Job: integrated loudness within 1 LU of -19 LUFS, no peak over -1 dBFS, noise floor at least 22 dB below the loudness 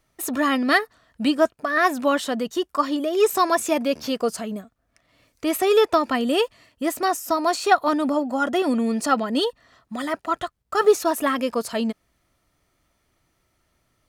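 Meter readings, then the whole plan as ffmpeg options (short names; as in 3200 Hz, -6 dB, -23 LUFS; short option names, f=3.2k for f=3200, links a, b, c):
loudness -22.5 LUFS; peak -3.5 dBFS; loudness target -19.0 LUFS
-> -af "volume=3.5dB,alimiter=limit=-1dB:level=0:latency=1"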